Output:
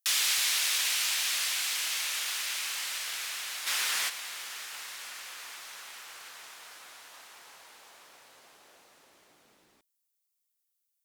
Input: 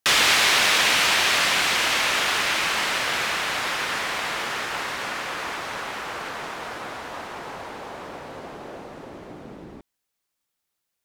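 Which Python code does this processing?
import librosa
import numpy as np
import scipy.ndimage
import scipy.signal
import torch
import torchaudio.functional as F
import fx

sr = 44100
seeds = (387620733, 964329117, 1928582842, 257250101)

y = librosa.effects.preemphasis(x, coef=0.97, zi=[0.0])
y = fx.env_flatten(y, sr, amount_pct=70, at=(3.66, 4.08), fade=0.02)
y = y * 10.0 ** (-3.0 / 20.0)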